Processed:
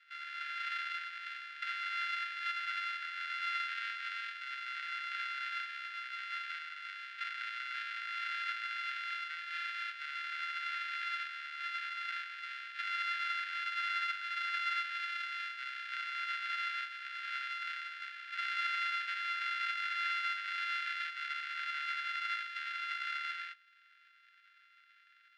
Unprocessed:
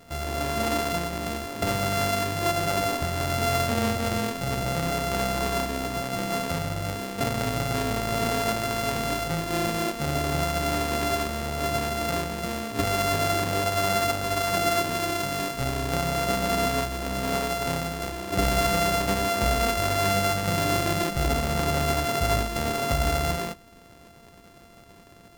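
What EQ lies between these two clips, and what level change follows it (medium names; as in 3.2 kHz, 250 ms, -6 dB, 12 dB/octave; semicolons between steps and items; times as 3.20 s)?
steep high-pass 1.4 kHz 96 dB/octave; low-pass 8.1 kHz 12 dB/octave; distance through air 390 m; 0.0 dB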